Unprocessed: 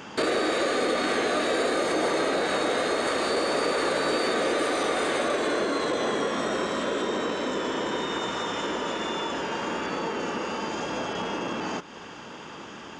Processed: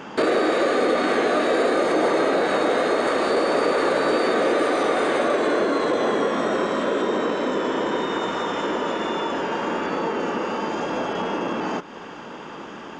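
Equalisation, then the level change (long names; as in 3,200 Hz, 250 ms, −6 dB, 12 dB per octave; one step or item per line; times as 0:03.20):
parametric band 85 Hz −10.5 dB 1.2 octaves
high-shelf EQ 2,600 Hz −11 dB
+6.5 dB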